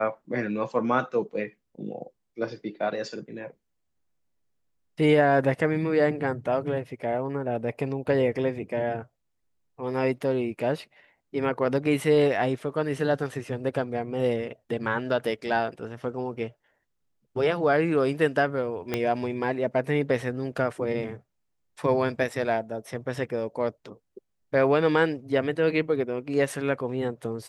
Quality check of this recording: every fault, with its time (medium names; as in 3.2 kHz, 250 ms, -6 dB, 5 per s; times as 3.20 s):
18.94 s: pop -12 dBFS